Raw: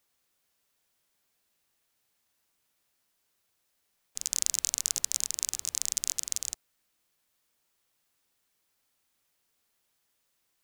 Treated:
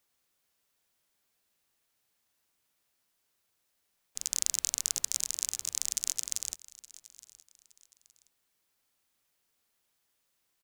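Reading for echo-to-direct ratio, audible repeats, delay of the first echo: −19.5 dB, 2, 868 ms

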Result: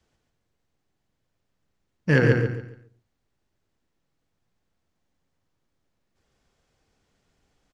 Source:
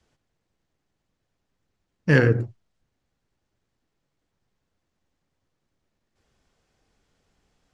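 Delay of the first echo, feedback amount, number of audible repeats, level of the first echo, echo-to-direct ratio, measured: 140 ms, 29%, 3, −4.0 dB, −3.5 dB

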